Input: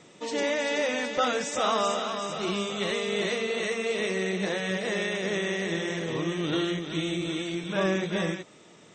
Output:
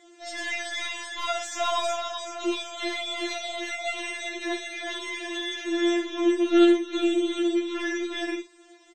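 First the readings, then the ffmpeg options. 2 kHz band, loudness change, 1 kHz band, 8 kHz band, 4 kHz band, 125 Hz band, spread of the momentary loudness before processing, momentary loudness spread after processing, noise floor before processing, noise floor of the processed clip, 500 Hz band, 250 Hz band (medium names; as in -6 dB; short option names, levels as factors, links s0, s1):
-0.5 dB, +1.5 dB, -0.5 dB, 0.0 dB, +1.0 dB, under -25 dB, 4 LU, 10 LU, -53 dBFS, -53 dBFS, 0.0 dB, +5.0 dB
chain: -filter_complex "[0:a]aeval=exprs='0.211*(cos(1*acos(clip(val(0)/0.211,-1,1)))-cos(1*PI/2))+0.00531*(cos(4*acos(clip(val(0)/0.211,-1,1)))-cos(4*PI/2))+0.00668*(cos(7*acos(clip(val(0)/0.211,-1,1)))-cos(7*PI/2))':c=same,asplit=2[s0][s1];[s1]adelay=49,volume=0.335[s2];[s0][s2]amix=inputs=2:normalize=0,afftfilt=real='re*4*eq(mod(b,16),0)':imag='im*4*eq(mod(b,16),0)':win_size=2048:overlap=0.75,volume=1.33"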